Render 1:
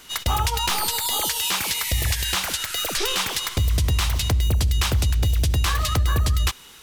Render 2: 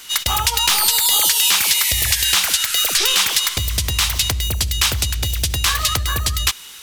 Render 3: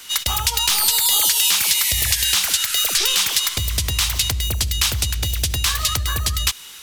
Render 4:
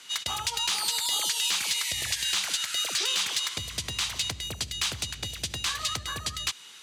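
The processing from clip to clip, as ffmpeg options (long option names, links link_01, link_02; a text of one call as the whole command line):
ffmpeg -i in.wav -af "tiltshelf=frequency=1200:gain=-6.5,volume=3.5dB" out.wav
ffmpeg -i in.wav -filter_complex "[0:a]acrossover=split=190|3000[link_01][link_02][link_03];[link_02]acompressor=threshold=-26dB:ratio=2.5[link_04];[link_01][link_04][link_03]amix=inputs=3:normalize=0,volume=-1dB" out.wav
ffmpeg -i in.wav -af "highpass=140,lowpass=7600,bandreject=frequency=5400:width=19,asoftclip=type=hard:threshold=-11.5dB,volume=-7.5dB" out.wav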